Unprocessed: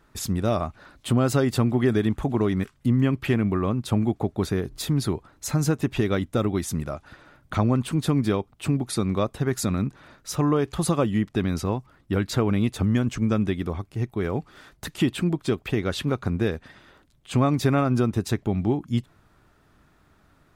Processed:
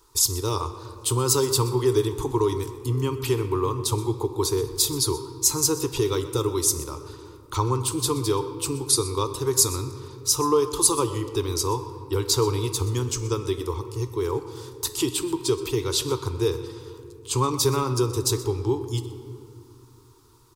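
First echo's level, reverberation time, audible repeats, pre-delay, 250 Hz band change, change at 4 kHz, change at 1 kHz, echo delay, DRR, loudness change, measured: -17.0 dB, 2.5 s, 1, 3 ms, -6.0 dB, +8.0 dB, +2.5 dB, 0.125 s, 8.5 dB, +0.5 dB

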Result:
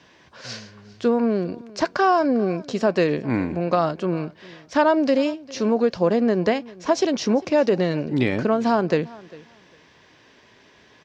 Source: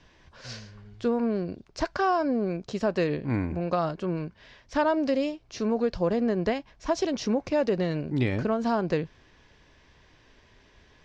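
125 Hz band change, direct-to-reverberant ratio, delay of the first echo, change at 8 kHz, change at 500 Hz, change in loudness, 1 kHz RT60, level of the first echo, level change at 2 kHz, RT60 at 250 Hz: +2.5 dB, none, 0.4 s, n/a, +6.5 dB, +6.0 dB, none, -21.5 dB, +6.5 dB, none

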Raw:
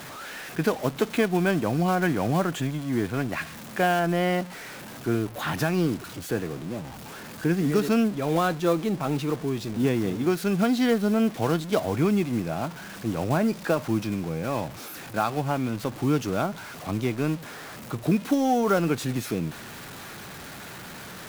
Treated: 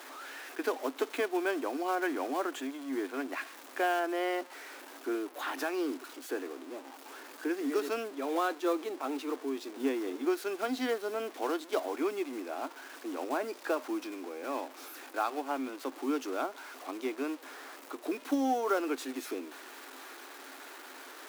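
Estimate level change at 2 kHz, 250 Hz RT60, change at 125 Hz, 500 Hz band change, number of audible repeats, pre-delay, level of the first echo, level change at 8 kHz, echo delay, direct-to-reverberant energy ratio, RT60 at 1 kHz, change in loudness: -6.5 dB, none, under -40 dB, -6.5 dB, none, none, none, -8.0 dB, none, none, none, -8.5 dB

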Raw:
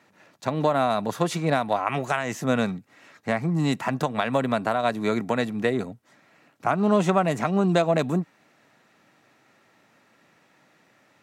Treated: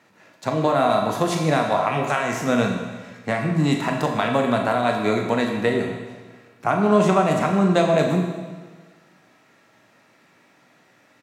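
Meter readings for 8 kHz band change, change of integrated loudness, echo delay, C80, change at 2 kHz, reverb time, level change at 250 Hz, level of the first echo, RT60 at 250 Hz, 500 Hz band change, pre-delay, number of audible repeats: +4.0 dB, +3.5 dB, 41 ms, 5.5 dB, +3.5 dB, 1.4 s, +3.5 dB, -10.0 dB, 1.5 s, +4.0 dB, 17 ms, 1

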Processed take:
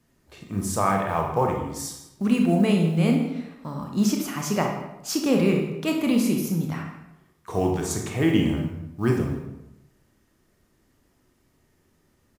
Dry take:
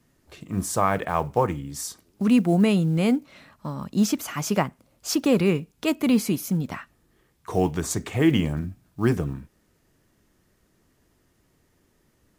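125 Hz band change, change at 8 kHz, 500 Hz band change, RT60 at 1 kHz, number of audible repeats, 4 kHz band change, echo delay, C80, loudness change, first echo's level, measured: +0.5 dB, -1.0 dB, 0.0 dB, 0.85 s, 1, -0.5 dB, 0.162 s, 7.0 dB, 0.0 dB, -16.0 dB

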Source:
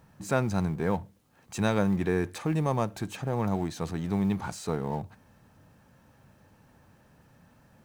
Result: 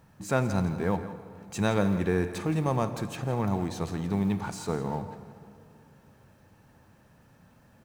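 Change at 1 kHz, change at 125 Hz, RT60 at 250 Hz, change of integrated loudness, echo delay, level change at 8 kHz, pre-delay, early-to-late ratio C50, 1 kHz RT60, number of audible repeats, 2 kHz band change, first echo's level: +0.5 dB, +0.5 dB, 2.9 s, +0.5 dB, 0.168 s, +0.5 dB, 9 ms, 10.0 dB, 2.7 s, 1, +0.5 dB, -14.0 dB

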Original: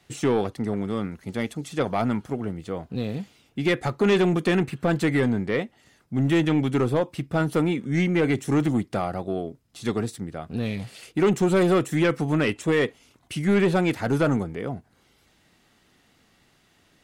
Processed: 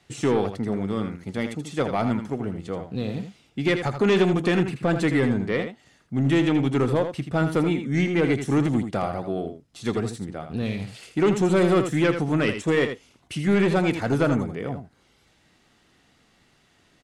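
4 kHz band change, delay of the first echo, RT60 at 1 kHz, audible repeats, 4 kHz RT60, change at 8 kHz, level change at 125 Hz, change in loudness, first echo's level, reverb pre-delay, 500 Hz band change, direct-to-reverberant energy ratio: +0.5 dB, 81 ms, none, 1, none, -0.5 dB, +0.5 dB, +0.5 dB, -8.5 dB, none, +0.5 dB, none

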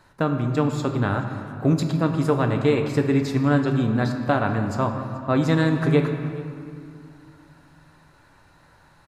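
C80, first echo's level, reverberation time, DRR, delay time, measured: 7.0 dB, -21.0 dB, 2.4 s, 4.0 dB, 0.429 s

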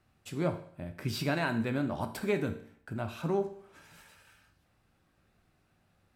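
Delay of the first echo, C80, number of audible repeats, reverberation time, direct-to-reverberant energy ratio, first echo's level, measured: none, 15.0 dB, none, 0.60 s, 7.0 dB, none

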